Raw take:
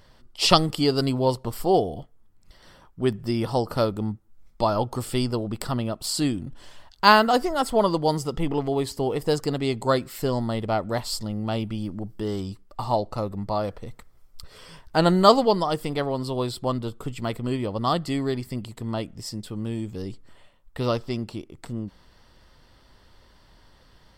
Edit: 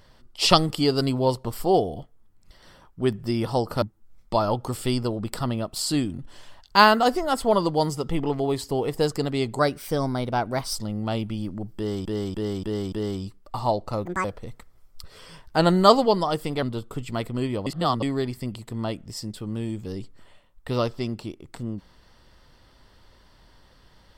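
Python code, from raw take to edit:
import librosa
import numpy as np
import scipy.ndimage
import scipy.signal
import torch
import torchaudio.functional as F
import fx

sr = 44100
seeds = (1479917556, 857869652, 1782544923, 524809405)

y = fx.edit(x, sr, fx.cut(start_s=3.82, length_s=0.28),
    fx.speed_span(start_s=9.87, length_s=1.29, speed=1.11),
    fx.repeat(start_s=12.17, length_s=0.29, count=5),
    fx.speed_span(start_s=13.3, length_s=0.34, speed=1.77),
    fx.cut(start_s=16.02, length_s=0.7),
    fx.reverse_span(start_s=17.76, length_s=0.36), tone=tone)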